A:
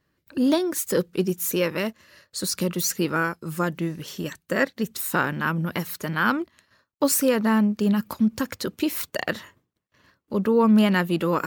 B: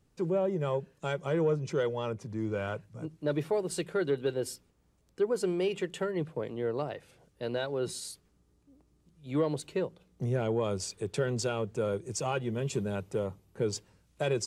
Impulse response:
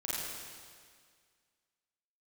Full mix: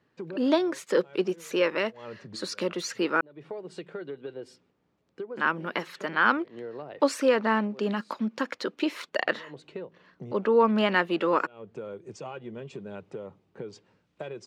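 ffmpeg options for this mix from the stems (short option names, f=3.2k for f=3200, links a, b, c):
-filter_complex "[0:a]highpass=340,volume=1dB,asplit=3[a][b][c];[a]atrim=end=3.21,asetpts=PTS-STARTPTS,afade=t=out:st=3.206:d=0.004:c=hsin[d];[b]atrim=start=3.21:end=5.37,asetpts=PTS-STARTPTS,volume=0[e];[c]atrim=start=5.37,asetpts=PTS-STARTPTS,afade=t=in:d=0.004:c=hsin[f];[d][e][f]concat=n=3:v=0:a=1,asplit=2[g][h];[1:a]acompressor=threshold=-36dB:ratio=6,volume=1.5dB[i];[h]apad=whole_len=637798[j];[i][j]sidechaincompress=threshold=-41dB:ratio=12:attack=7.3:release=160[k];[g][k]amix=inputs=2:normalize=0,highpass=170,lowpass=3.4k"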